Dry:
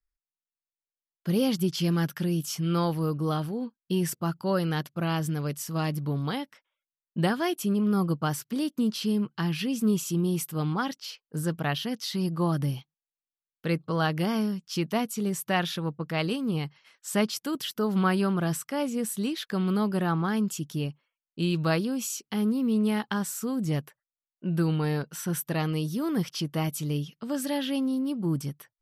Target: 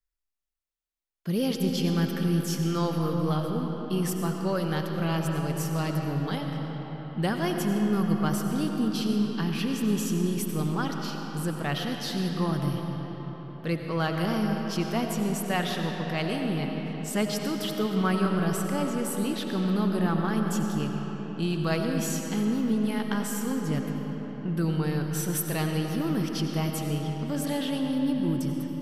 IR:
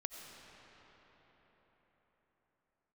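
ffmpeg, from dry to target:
-filter_complex "[0:a]asettb=1/sr,asplit=3[link_01][link_02][link_03];[link_01]atrim=end=25.104[link_04];[link_02]atrim=start=25.1:end=25.78,asetpts=PTS-STARTPTS,afade=type=in:duration=0.004:curve=qsin,afade=type=out:start_time=0.676:duration=0.004:curve=qsin,highshelf=frequency=3100:gain=5.5[link_05];[link_03]atrim=start=25.776[link_06];[link_04][link_05]acrossfade=duration=0.004:curve1=hsin:curve2=qsin[link_07];[link_07][link_06]acrossfade=duration=0.004:curve1=qsin:curve2=hsin,asplit=2[link_08][link_09];[link_09]asoftclip=type=hard:threshold=-25dB,volume=-10dB[link_10];[link_08][link_10]amix=inputs=2:normalize=0[link_11];[1:a]atrim=start_sample=2205[link_12];[link_11][link_12]afir=irnorm=-1:irlink=0"

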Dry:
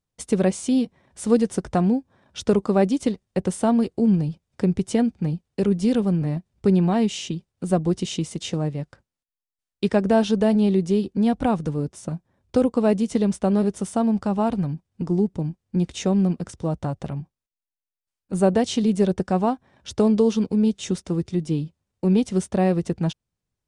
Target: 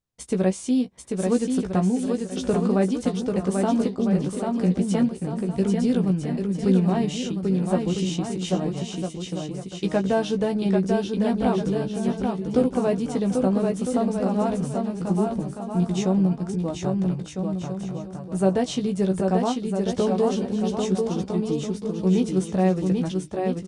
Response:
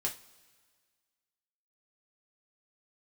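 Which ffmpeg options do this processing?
-filter_complex "[0:a]asplit=2[link_01][link_02];[link_02]adelay=16,volume=-6dB[link_03];[link_01][link_03]amix=inputs=2:normalize=0,aecho=1:1:790|1304|1637|1854|1995:0.631|0.398|0.251|0.158|0.1,volume=-4dB"

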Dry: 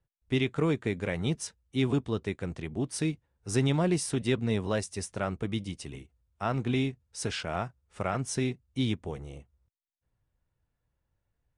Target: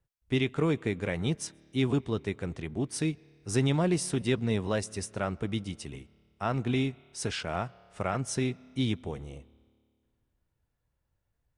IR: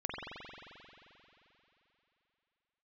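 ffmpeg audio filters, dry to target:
-filter_complex "[0:a]asplit=2[link_01][link_02];[link_02]equalizer=frequency=6700:width_type=o:width=0.77:gain=-8[link_03];[1:a]atrim=start_sample=2205,asetrate=70560,aresample=44100,adelay=132[link_04];[link_03][link_04]afir=irnorm=-1:irlink=0,volume=-24.5dB[link_05];[link_01][link_05]amix=inputs=2:normalize=0"

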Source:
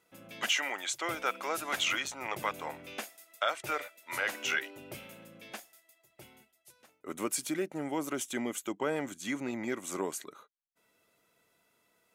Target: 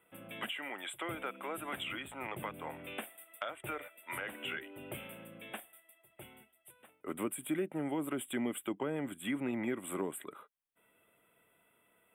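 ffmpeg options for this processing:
ffmpeg -i in.wav -filter_complex "[0:a]asuperstop=centerf=5400:order=12:qfactor=1.2,acrossover=split=340[link_01][link_02];[link_02]acompressor=threshold=-40dB:ratio=6[link_03];[link_01][link_03]amix=inputs=2:normalize=0,volume=1.5dB" out.wav

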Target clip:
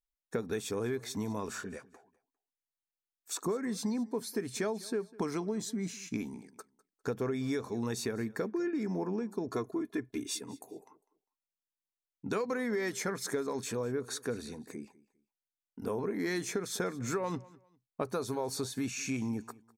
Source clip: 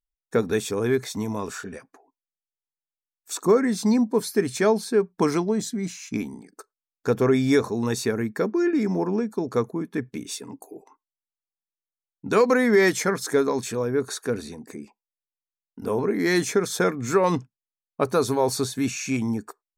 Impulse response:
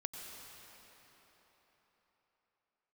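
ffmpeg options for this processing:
-filter_complex "[0:a]asettb=1/sr,asplit=3[link_01][link_02][link_03];[link_01]atrim=end=9.484[link_04];[link_02]atrim=start=9.48:end=10.39,asetpts=PTS-STARTPTS,afade=type=in:duration=0.004:curve=qsin,afade=type=out:start_time=0.906:duration=0.004:curve=qsin,aecho=1:1:2.9:0.78,atrim=end_sample=40131[link_05];[link_03]atrim=start=10.386[link_06];[link_04][link_05]acrossfade=duration=0.004:curve1=hsin:curve2=qsin[link_07];[link_07][link_06]acrossfade=duration=0.004:curve1=qsin:curve2=hsin,acompressor=threshold=-25dB:ratio=6,aecho=1:1:201|402:0.0841|0.0219,volume=-5.5dB"

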